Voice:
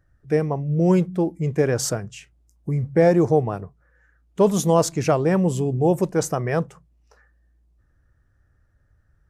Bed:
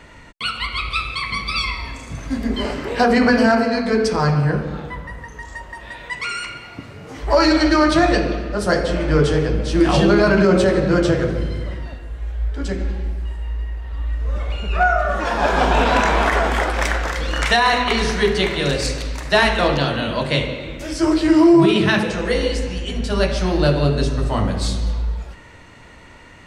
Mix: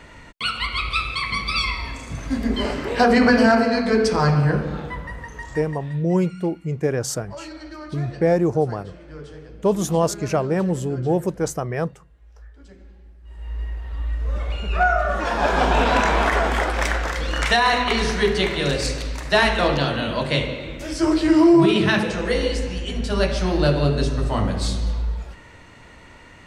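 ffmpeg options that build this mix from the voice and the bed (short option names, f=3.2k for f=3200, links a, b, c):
-filter_complex "[0:a]adelay=5250,volume=-2dB[a];[1:a]volume=20dB,afade=t=out:st=5.43:d=0.64:silence=0.0794328,afade=t=in:st=13.23:d=0.41:silence=0.0944061[b];[a][b]amix=inputs=2:normalize=0"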